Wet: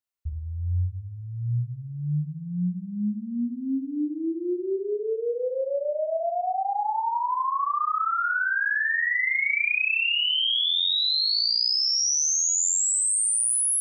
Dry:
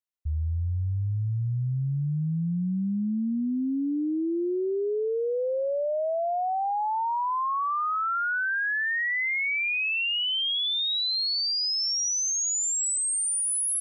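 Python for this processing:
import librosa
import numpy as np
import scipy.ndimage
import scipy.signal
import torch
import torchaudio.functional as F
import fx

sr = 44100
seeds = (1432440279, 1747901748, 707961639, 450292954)

y = fx.dereverb_blind(x, sr, rt60_s=1.3)
y = fx.room_flutter(y, sr, wall_m=5.8, rt60_s=0.78)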